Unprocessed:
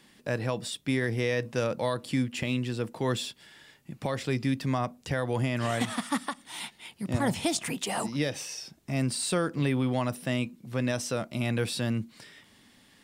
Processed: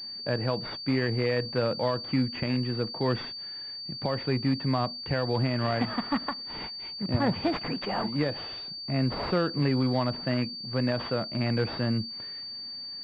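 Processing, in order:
switching amplifier with a slow clock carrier 4,600 Hz
level +1.5 dB

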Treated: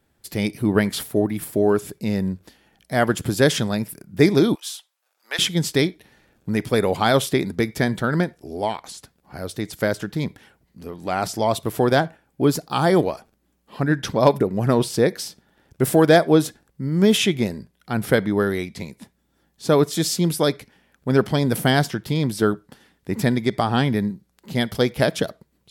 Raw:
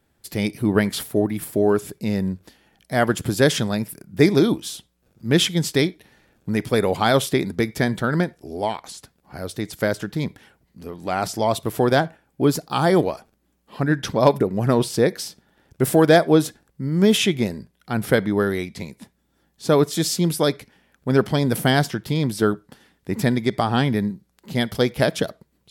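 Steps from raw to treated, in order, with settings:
0:04.55–0:05.39: high-pass filter 740 Hz 24 dB per octave

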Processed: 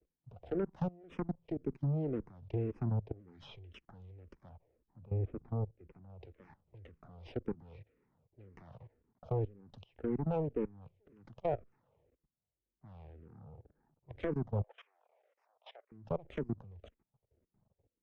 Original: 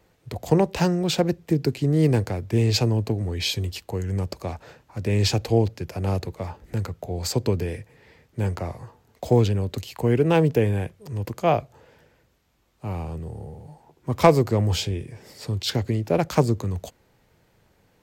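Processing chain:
lower of the sound and its delayed copy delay 0.33 ms
treble cut that deepens with the level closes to 1,100 Hz, closed at −19 dBFS
0:14.63–0:15.92: elliptic high-pass filter 600 Hz, stop band 70 dB
low-pass that shuts in the quiet parts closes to 800 Hz, open at −20 dBFS
output level in coarse steps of 21 dB
0:04.49–0:06.10: head-to-tape spacing loss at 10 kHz 44 dB
frequency shifter mixed with the dry sound −1.9 Hz
level −8.5 dB

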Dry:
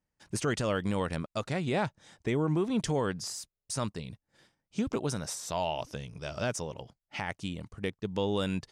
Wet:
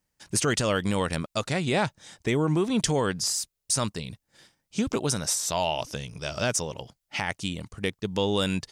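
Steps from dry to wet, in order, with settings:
high-shelf EQ 2,800 Hz +8.5 dB
level +4 dB

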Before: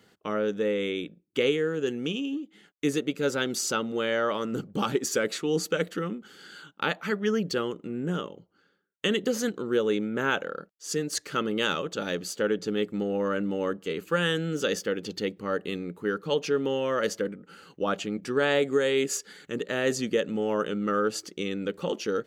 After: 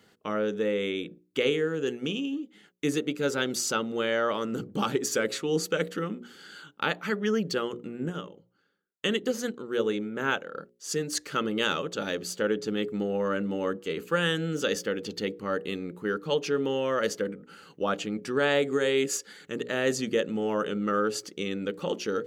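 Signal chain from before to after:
mains-hum notches 60/120/180/240/300/360/420/480/540 Hz
0:08.09–0:10.55: expander for the loud parts 1.5 to 1, over −34 dBFS

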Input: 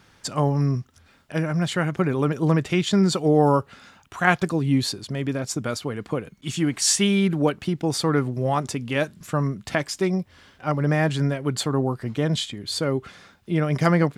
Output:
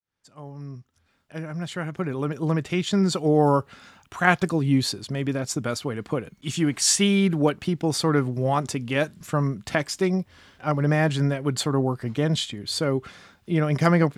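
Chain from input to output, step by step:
fade in at the beginning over 3.93 s

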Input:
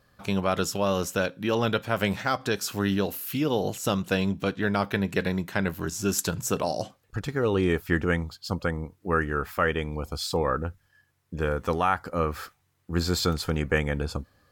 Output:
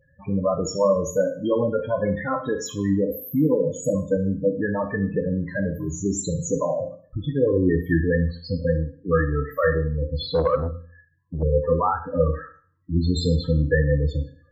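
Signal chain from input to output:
EQ curve with evenly spaced ripples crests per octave 1.1, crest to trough 7 dB
spectral peaks only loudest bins 8
on a send at −4.5 dB: dynamic equaliser 170 Hz, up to −3 dB, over −37 dBFS, Q 2.2 + convolution reverb RT60 0.45 s, pre-delay 11 ms
0:10.29–0:11.43: on the sum: saturating transformer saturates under 390 Hz
level +4.5 dB

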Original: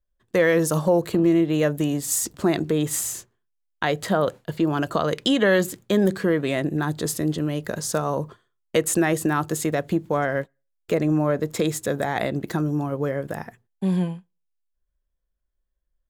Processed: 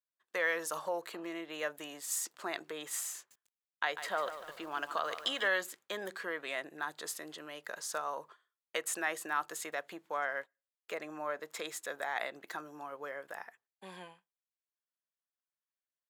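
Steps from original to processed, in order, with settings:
high-pass filter 1,100 Hz 12 dB per octave
high-shelf EQ 2,800 Hz −9 dB
0:03.16–0:05.48: feedback echo at a low word length 146 ms, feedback 55%, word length 8 bits, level −10.5 dB
level −3.5 dB

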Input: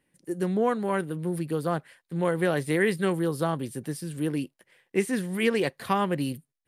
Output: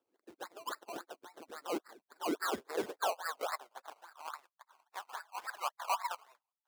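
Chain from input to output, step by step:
harmonic-percussive split with one part muted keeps percussive
elliptic low-pass filter 9,100 Hz
flat-topped bell 980 Hz +13 dB
in parallel at −2 dB: downward compressor, threshold −35 dBFS, peak gain reduction 20 dB
on the sum: band-pass filter sweep 2,200 Hz → 870 Hz, 0:01.37–0:05.24
sample-and-hold swept by an LFO 20×, swing 60% 3.6 Hz
soft clipping −22.5 dBFS, distortion −10 dB
high-pass filter sweep 330 Hz → 1,000 Hz, 0:02.39–0:04.35
level −7 dB

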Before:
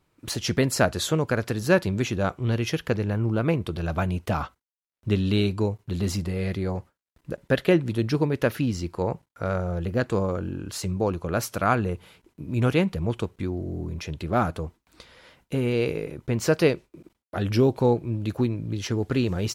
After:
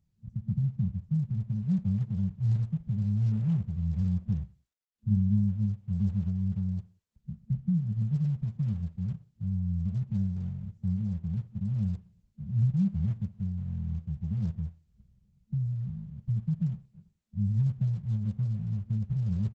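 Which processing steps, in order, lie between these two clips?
phaser with its sweep stopped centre 2,600 Hz, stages 6
brick-wall band-stop 220–8,400 Hz
repeating echo 61 ms, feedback 45%, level −21.5 dB
Opus 12 kbit/s 48,000 Hz

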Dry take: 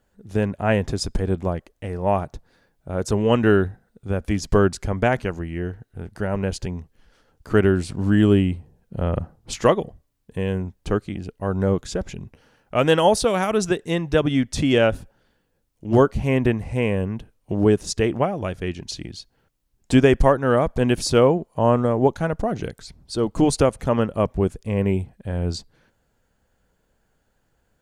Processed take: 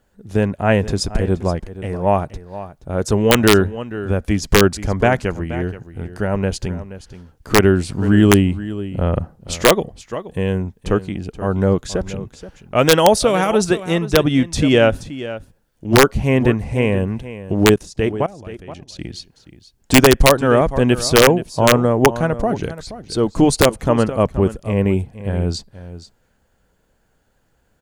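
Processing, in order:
0:17.74–0:18.99: output level in coarse steps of 21 dB
single-tap delay 476 ms −14.5 dB
wrap-around overflow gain 5.5 dB
level +4.5 dB

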